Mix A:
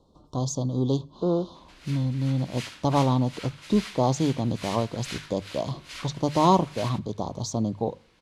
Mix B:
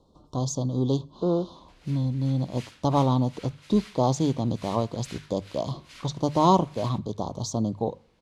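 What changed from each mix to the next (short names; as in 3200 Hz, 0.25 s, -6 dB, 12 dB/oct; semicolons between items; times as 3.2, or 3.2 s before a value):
background -8.0 dB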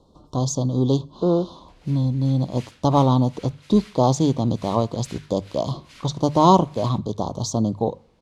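speech +5.0 dB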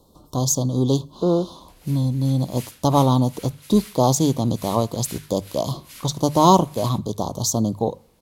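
master: remove air absorption 110 m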